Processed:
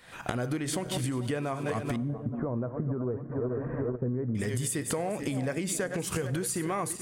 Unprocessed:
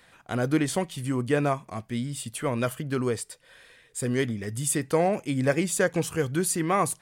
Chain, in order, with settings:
feedback delay that plays each chunk backwards 218 ms, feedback 60%, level −13.5 dB
camcorder AGC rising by 69 dB per second
0:01.96–0:04.35: Bessel low-pass filter 780 Hz, order 6
downward compressor, threshold −28 dBFS, peak gain reduction 10.5 dB
convolution reverb RT60 1.3 s, pre-delay 4 ms, DRR 19.5 dB

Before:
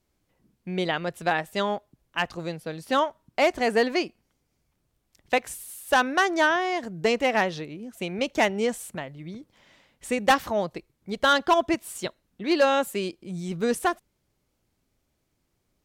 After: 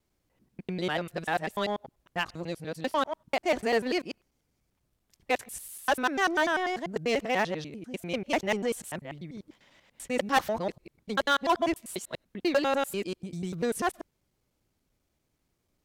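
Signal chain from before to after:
reversed piece by piece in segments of 98 ms
in parallel at −11.5 dB: wave folding −25.5 dBFS
on the sum: level −4.5 dB

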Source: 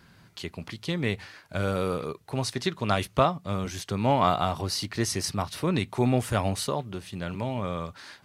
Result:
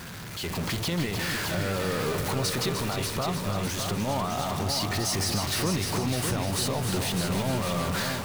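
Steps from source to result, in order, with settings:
converter with a step at zero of −26.5 dBFS
automatic gain control gain up to 10 dB
brickwall limiter −12.5 dBFS, peak gain reduction 10.5 dB
echo machine with several playback heads 303 ms, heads first and second, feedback 49%, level −8 dB
level −8.5 dB

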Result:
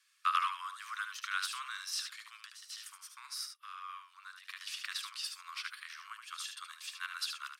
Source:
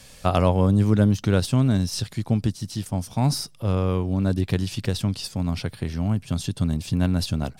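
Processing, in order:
0:02.41–0:04.61: downward compressor 6 to 1, threshold −25 dBFS, peak gain reduction 9 dB
noise gate −38 dBFS, range −17 dB
Butterworth high-pass 1,100 Hz 96 dB per octave
high-shelf EQ 2,100 Hz −11 dB
single-tap delay 74 ms −7 dB
level +2.5 dB

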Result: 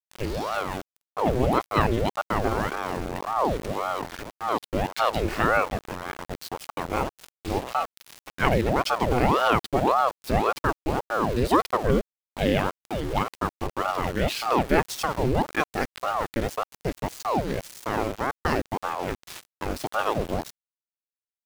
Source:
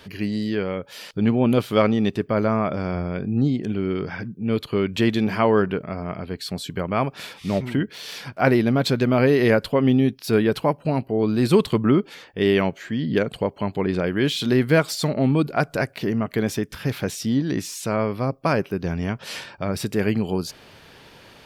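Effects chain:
centre clipping without the shift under −28 dBFS
ring modulator whose carrier an LFO sweeps 570 Hz, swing 80%, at 1.8 Hz
level −1 dB

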